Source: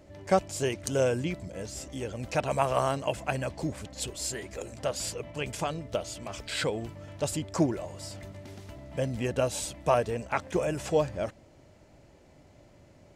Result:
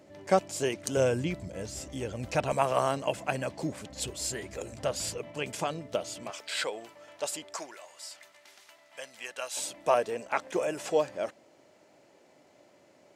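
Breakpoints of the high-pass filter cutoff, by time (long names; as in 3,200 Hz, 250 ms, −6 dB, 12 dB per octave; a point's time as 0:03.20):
170 Hz
from 0:00.97 47 Hz
from 0:02.53 150 Hz
from 0:03.90 61 Hz
from 0:05.18 170 Hz
from 0:06.30 570 Hz
from 0:07.56 1,200 Hz
from 0:09.57 320 Hz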